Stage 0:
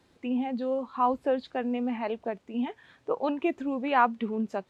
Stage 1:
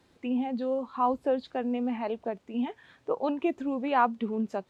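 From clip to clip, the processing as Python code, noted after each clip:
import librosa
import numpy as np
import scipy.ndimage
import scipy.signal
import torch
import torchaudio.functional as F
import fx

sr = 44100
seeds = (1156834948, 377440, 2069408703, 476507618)

y = fx.dynamic_eq(x, sr, hz=2000.0, q=1.1, threshold_db=-43.0, ratio=4.0, max_db=-5)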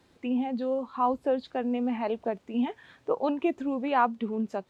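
y = fx.rider(x, sr, range_db=10, speed_s=2.0)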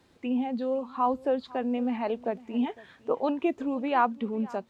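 y = x + 10.0 ** (-21.5 / 20.0) * np.pad(x, (int(505 * sr / 1000.0), 0))[:len(x)]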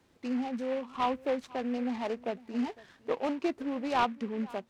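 y = fx.noise_mod_delay(x, sr, seeds[0], noise_hz=1600.0, depth_ms=0.047)
y = F.gain(torch.from_numpy(y), -4.0).numpy()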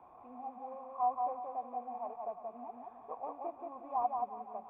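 y = fx.delta_mod(x, sr, bps=32000, step_db=-39.0)
y = fx.formant_cascade(y, sr, vowel='a')
y = fx.echo_feedback(y, sr, ms=178, feedback_pct=32, wet_db=-3.5)
y = F.gain(torch.from_numpy(y), 3.5).numpy()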